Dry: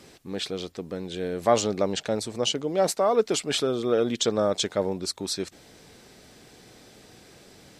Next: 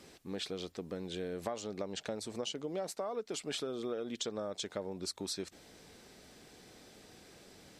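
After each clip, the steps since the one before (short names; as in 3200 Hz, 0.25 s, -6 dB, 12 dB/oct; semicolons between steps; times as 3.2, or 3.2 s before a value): bell 120 Hz -6 dB 0.3 oct; compressor 12:1, threshold -29 dBFS, peak gain reduction 15.5 dB; gain -5.5 dB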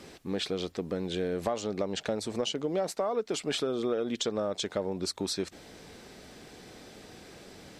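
high shelf 4800 Hz -5.5 dB; in parallel at -4 dB: hard clip -30 dBFS, distortion -21 dB; on the sum: gain +4 dB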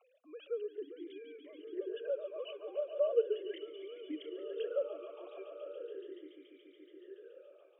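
sine-wave speech; swelling echo 0.142 s, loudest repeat 5, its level -14 dB; vowel sweep a-i 0.38 Hz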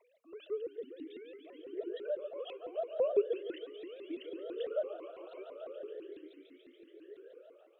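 shaped vibrato saw up 6 Hz, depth 250 cents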